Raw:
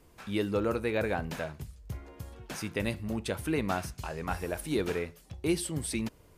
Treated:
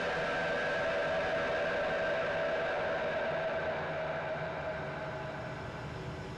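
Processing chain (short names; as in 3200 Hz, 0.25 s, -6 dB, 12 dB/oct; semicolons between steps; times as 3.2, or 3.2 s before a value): phase scrambler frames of 0.1 s; Paulstretch 28×, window 0.25 s, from 1.37; overdrive pedal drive 24 dB, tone 3200 Hz, clips at -21 dBFS; air absorption 110 m; gain -4 dB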